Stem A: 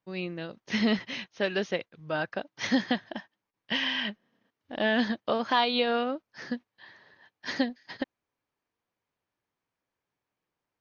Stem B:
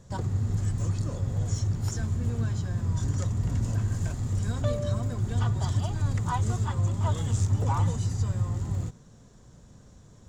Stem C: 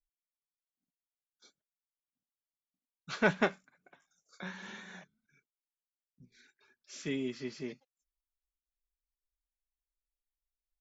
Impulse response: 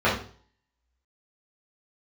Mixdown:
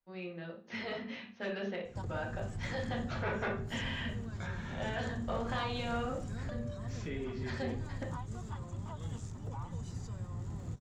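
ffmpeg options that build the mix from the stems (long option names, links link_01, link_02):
-filter_complex "[0:a]volume=-13.5dB,asplit=2[link_01][link_02];[link_02]volume=-13.5dB[link_03];[1:a]adelay=1850,volume=-6dB[link_04];[2:a]volume=0dB,asplit=2[link_05][link_06];[link_06]volume=-21.5dB[link_07];[link_04][link_05]amix=inputs=2:normalize=0,acrossover=split=160[link_08][link_09];[link_09]acompressor=threshold=-41dB:ratio=6[link_10];[link_08][link_10]amix=inputs=2:normalize=0,alimiter=level_in=2dB:limit=-24dB:level=0:latency=1:release=479,volume=-2dB,volume=0dB[link_11];[3:a]atrim=start_sample=2205[link_12];[link_03][link_07]amix=inputs=2:normalize=0[link_13];[link_13][link_12]afir=irnorm=-1:irlink=0[link_14];[link_01][link_11][link_14]amix=inputs=3:normalize=0,afftfilt=real='re*lt(hypot(re,im),0.2)':imag='im*lt(hypot(re,im),0.2)':win_size=1024:overlap=0.75,highshelf=frequency=5500:gain=-7,asoftclip=type=tanh:threshold=-26dB"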